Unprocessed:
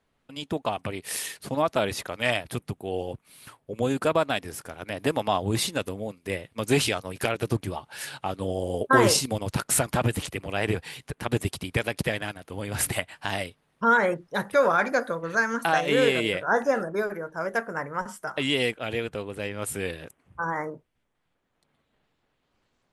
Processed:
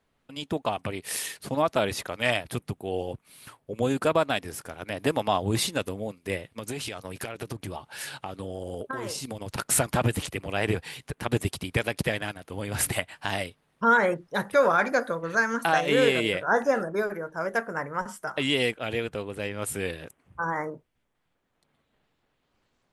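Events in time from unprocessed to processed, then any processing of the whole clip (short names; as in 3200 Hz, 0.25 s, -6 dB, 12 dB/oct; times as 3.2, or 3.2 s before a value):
6.46–9.58 compressor 8:1, threshold -30 dBFS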